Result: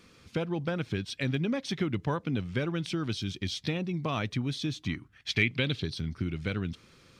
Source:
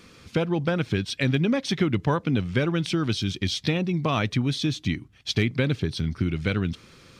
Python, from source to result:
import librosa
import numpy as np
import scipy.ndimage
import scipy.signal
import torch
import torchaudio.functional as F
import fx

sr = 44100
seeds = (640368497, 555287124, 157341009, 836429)

y = fx.peak_eq(x, sr, hz=fx.line((4.82, 1000.0), (5.93, 4700.0)), db=12.5, octaves=0.83, at=(4.82, 5.93), fade=0.02)
y = y * 10.0 ** (-7.0 / 20.0)